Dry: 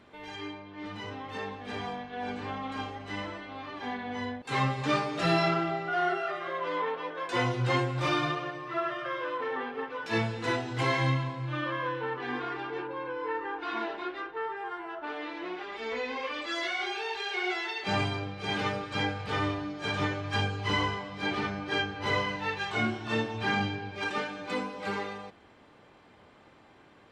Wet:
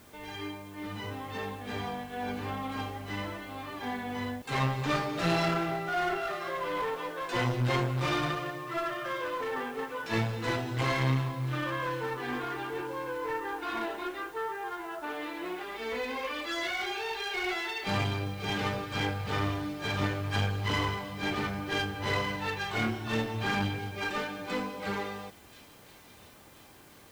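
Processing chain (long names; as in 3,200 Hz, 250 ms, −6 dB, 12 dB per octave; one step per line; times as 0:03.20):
low-shelf EQ 110 Hz +8.5 dB
asymmetric clip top −31 dBFS
bit-depth reduction 10 bits, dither triangular
delay with a high-pass on its return 1,033 ms, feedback 54%, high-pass 3,600 Hz, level −13.5 dB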